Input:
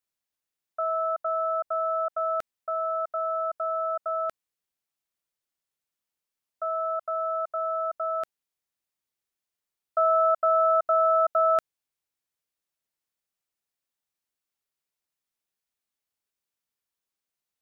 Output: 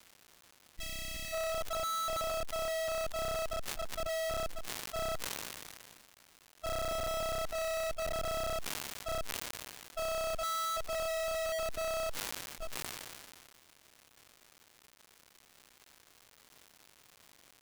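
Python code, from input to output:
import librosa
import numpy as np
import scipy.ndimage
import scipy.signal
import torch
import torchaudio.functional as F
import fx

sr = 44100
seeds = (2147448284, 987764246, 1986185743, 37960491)

y = fx.reverse_delay(x, sr, ms=576, wet_db=0)
y = fx.env_lowpass_down(y, sr, base_hz=1200.0, full_db=-21.0)
y = fx.echo_filtered(y, sr, ms=306, feedback_pct=33, hz=860.0, wet_db=-16.0)
y = fx.env_lowpass(y, sr, base_hz=450.0, full_db=-20.0)
y = fx.schmitt(y, sr, flips_db=-26.5)
y = fx.hpss(y, sr, part='percussive', gain_db=-15)
y = 10.0 ** (-37.5 / 20.0) * np.tanh(y / 10.0 ** (-37.5 / 20.0))
y = fx.spec_box(y, sr, start_s=0.48, length_s=0.85, low_hz=360.0, high_hz=1700.0, gain_db=-18)
y = fx.dmg_crackle(y, sr, seeds[0], per_s=330.0, level_db=-48.0)
y = fx.sustainer(y, sr, db_per_s=28.0)
y = F.gain(torch.from_numpy(y), 3.0).numpy()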